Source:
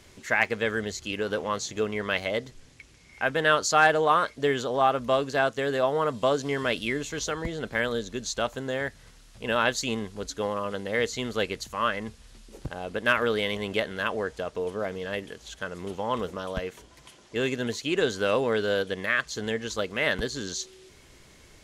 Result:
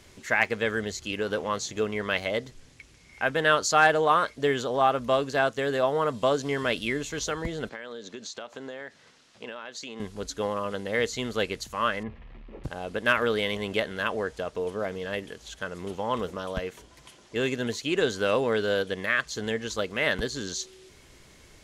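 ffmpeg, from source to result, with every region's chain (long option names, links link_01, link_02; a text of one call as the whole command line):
ffmpeg -i in.wav -filter_complex "[0:a]asettb=1/sr,asplit=3[link_01][link_02][link_03];[link_01]atrim=end=7.694[link_04];[link_02]atrim=start=7.69:end=10,asetpts=PTS-STARTPTS,afade=type=in:duration=0.004:curve=qsin,afade=type=out:start_time=2.306:duration=0.004:curve=qsin,highpass=240,lowpass=6200,acompressor=threshold=-34dB:ratio=12:attack=3.2:release=140:knee=1:detection=peak[link_05];[link_03]atrim=start=9.996[link_06];[link_04][link_05]acrossfade=duration=0.004:curve1=hsin:curve2=qsin[link_07];[link_07][link_06]acrossfade=duration=0.004:curve1=qsin:curve2=hsin,asettb=1/sr,asplit=3[link_08][link_09][link_10];[link_08]atrim=end=12.034[link_11];[link_09]atrim=start=12.03:end=12.64,asetpts=PTS-STARTPTS,afade=type=in:duration=0.004:curve=qsin,afade=type=out:start_time=0.606:duration=0.004:curve=qsin,aeval=exprs='val(0)+0.5*0.00596*sgn(val(0))':channel_layout=same,lowpass=frequency=2400:width=0.5412,lowpass=frequency=2400:width=1.3066,bandreject=frequency=1500:width=5.4[link_12];[link_10]atrim=start=12.636[link_13];[link_11][link_12]acrossfade=duration=0.004:curve1=hsin:curve2=qsin[link_14];[link_14][link_13]acrossfade=duration=0.004:curve1=qsin:curve2=hsin" out.wav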